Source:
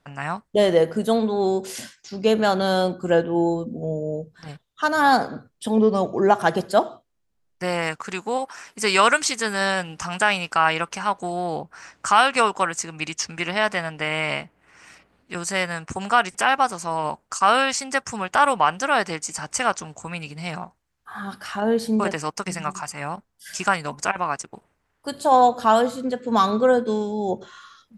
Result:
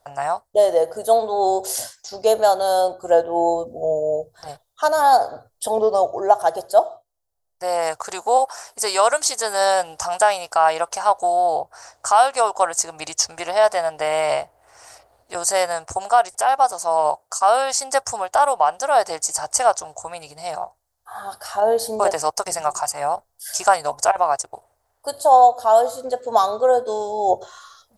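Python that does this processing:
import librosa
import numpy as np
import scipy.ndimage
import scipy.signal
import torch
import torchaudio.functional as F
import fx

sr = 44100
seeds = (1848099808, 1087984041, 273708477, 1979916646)

y = fx.high_shelf(x, sr, hz=8900.0, db=6.5, at=(2.26, 2.81))
y = fx.highpass(y, sr, hz=99.0, slope=12, at=(16.72, 17.5))
y = fx.curve_eq(y, sr, hz=(110.0, 190.0, 690.0, 1100.0, 2500.0, 4500.0, 7700.0, 11000.0), db=(0, -20, 12, 1, -9, 4, 7, 12))
y = fx.rider(y, sr, range_db=4, speed_s=0.5)
y = F.gain(torch.from_numpy(y), -2.0).numpy()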